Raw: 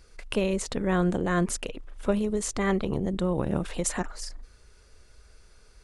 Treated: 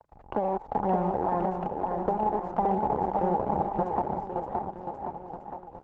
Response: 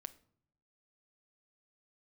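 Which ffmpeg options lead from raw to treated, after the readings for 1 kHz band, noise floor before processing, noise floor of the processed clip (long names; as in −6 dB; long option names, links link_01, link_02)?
+10.5 dB, −56 dBFS, −50 dBFS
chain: -af "acrusher=bits=5:dc=4:mix=0:aa=0.000001,lowpass=frequency=830:width_type=q:width=10,bandreject=frequency=50:width_type=h:width=6,bandreject=frequency=100:width_type=h:width=6,bandreject=frequency=150:width_type=h:width=6,acompressor=threshold=-23dB:ratio=20,aphaser=in_gain=1:out_gain=1:delay=3.7:decay=0.31:speed=1.1:type=triangular,highpass=44,aecho=1:1:570|1083|1545|1960|2334:0.631|0.398|0.251|0.158|0.1" -ar 48000 -c:a libopus -b:a 12k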